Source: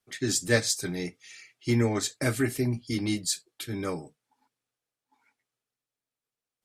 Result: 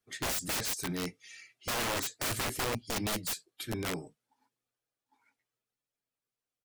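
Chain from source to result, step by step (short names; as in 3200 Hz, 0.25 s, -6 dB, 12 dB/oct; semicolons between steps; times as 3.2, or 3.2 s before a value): bin magnitudes rounded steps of 15 dB; doubler 18 ms -14 dB; wrapped overs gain 25 dB; gain -2.5 dB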